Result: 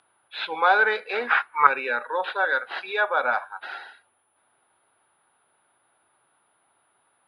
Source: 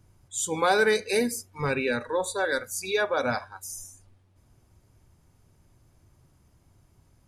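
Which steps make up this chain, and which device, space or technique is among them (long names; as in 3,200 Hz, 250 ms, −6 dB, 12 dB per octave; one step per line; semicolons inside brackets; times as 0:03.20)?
toy sound module (linearly interpolated sample-rate reduction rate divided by 4×; switching amplifier with a slow clock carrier 10,000 Hz; loudspeaker in its box 680–3,700 Hz, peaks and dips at 830 Hz +5 dB, 1,400 Hz +6 dB, 2,100 Hz −3 dB, 3,500 Hz +3 dB)
0:01.27–0:01.67: flat-topped bell 1,500 Hz +13.5 dB
level +3.5 dB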